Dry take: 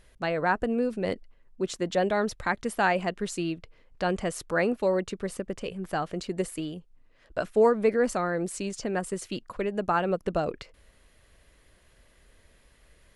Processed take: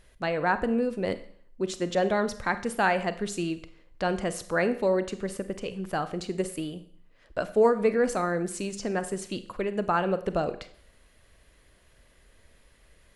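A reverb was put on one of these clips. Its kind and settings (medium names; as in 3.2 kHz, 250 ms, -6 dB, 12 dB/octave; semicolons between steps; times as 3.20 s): Schroeder reverb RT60 0.57 s, combs from 31 ms, DRR 11.5 dB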